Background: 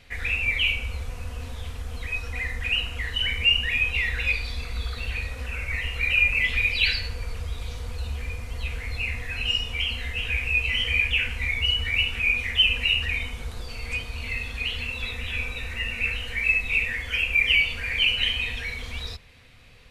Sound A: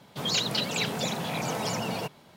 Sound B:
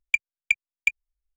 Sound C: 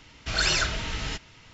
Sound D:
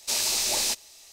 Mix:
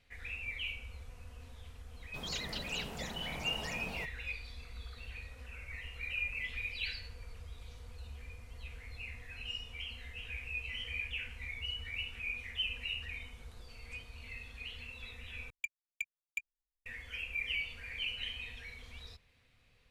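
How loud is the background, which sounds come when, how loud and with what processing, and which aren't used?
background -16.5 dB
1.98 s: add A -13 dB
15.50 s: replace with B -14 dB + saturation -13.5 dBFS
not used: C, D

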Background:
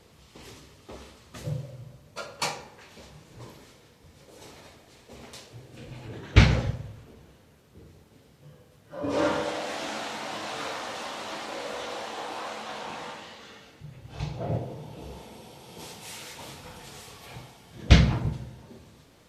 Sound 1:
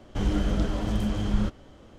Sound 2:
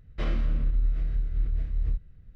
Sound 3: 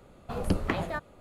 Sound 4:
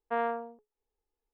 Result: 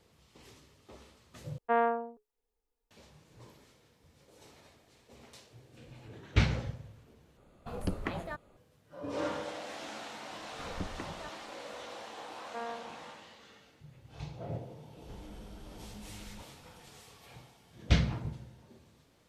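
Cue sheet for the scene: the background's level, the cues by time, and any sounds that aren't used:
background -9.5 dB
1.58 s: replace with 4 -0.5 dB + comb 4.2 ms, depth 54%
7.37 s: replace with 3 -7 dB
10.30 s: add 3 -12 dB + distance through air 470 m
12.43 s: add 4 -10 dB
14.93 s: add 1 -18 dB + peak limiter -23 dBFS
not used: 2

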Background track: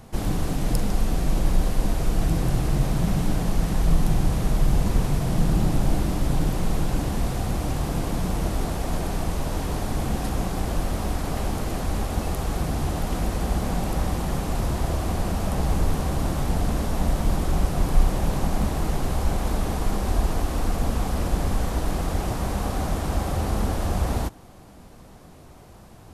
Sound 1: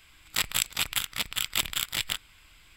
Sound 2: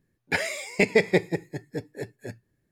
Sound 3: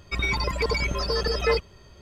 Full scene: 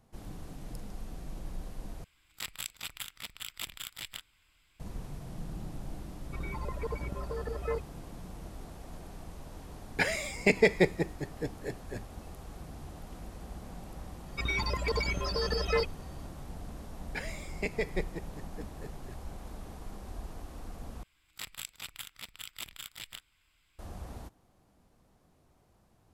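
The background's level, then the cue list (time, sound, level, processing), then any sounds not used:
background track -19.5 dB
2.04 s: replace with 1 -12.5 dB
6.21 s: add 3 -10.5 dB + low-pass 1.4 kHz
9.67 s: add 2 -3 dB
14.26 s: add 3 -6 dB
16.83 s: add 2 -13 dB
21.03 s: replace with 1 -15 dB

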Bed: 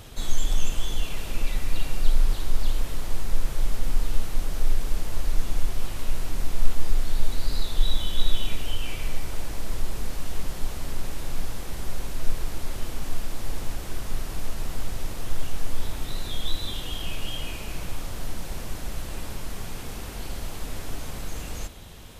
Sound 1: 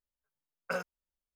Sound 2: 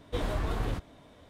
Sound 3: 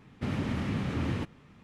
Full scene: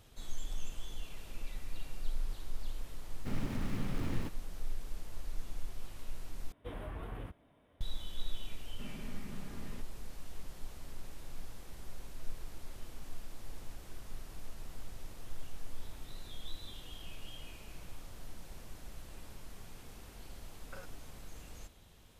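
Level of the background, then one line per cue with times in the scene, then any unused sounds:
bed -16 dB
3.04 s: add 3 -7.5 dB + dead-time distortion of 0.15 ms
6.52 s: replace with 2 -12 dB + high-order bell 5.5 kHz -14 dB 1.2 oct
8.57 s: add 3 -17.5 dB + comb 4.9 ms, depth 54%
20.03 s: add 1 -9 dB + compression, threshold -37 dBFS

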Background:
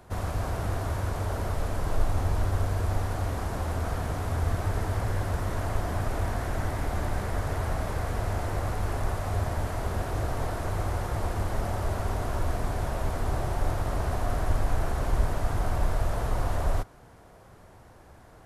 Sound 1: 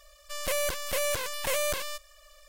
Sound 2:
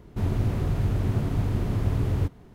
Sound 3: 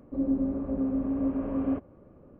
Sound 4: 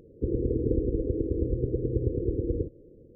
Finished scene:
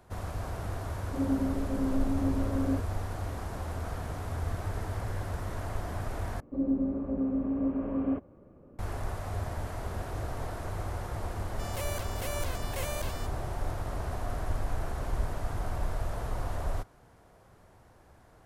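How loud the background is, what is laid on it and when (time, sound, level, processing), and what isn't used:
background -6 dB
1.01 s: add 3 -2.5 dB
6.40 s: replace with 3 -1.5 dB
11.29 s: add 1 -9 dB + short-mantissa float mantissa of 8-bit
not used: 2, 4

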